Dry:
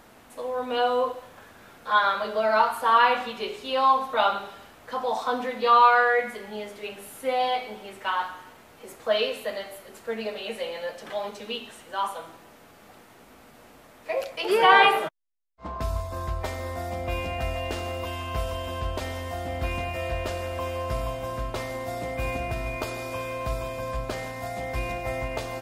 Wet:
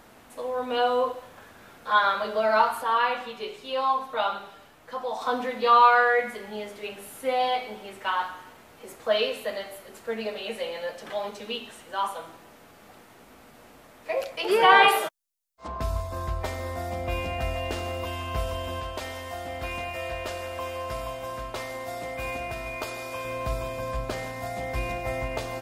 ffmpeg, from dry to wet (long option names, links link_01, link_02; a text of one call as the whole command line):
ffmpeg -i in.wav -filter_complex "[0:a]asplit=3[link_01][link_02][link_03];[link_01]afade=type=out:start_time=2.82:duration=0.02[link_04];[link_02]flanger=delay=5.5:depth=1.6:regen=68:speed=1.6:shape=triangular,afade=type=in:start_time=2.82:duration=0.02,afade=type=out:start_time=5.2:duration=0.02[link_05];[link_03]afade=type=in:start_time=5.2:duration=0.02[link_06];[link_04][link_05][link_06]amix=inputs=3:normalize=0,asettb=1/sr,asplit=3[link_07][link_08][link_09];[link_07]atrim=end=14.884[link_10];[link_08]atrim=start=14.88:end=15.68,asetpts=PTS-STARTPTS,afade=type=in:duration=0.004:curve=qsin,afade=type=out:start_time=0.796:duration=0.004:curve=qsin,bass=frequency=250:gain=-10,treble=frequency=4000:gain=11[link_11];[link_09]atrim=start=15.676[link_12];[link_10][link_11]acrossfade=duration=0.004:curve1=hsin:curve2=qsin[link_13];[link_13][link_12]acrossfade=duration=0.004:curve1=qsin:curve2=hsin,asettb=1/sr,asplit=3[link_14][link_15][link_16];[link_14]atrim=end=18.804[link_17];[link_15]atrim=start=18.8:end=23.25,asetpts=PTS-STARTPTS,afade=type=in:duration=0.004:curve=qsin,afade=type=out:start_time=4.446:duration=0.004:curve=qsin,lowshelf=frequency=350:gain=-9[link_18];[link_16]atrim=start=23.246[link_19];[link_17][link_18]acrossfade=duration=0.004:curve1=hsin:curve2=qsin[link_20];[link_20][link_19]acrossfade=duration=0.004:curve1=qsin:curve2=hsin" out.wav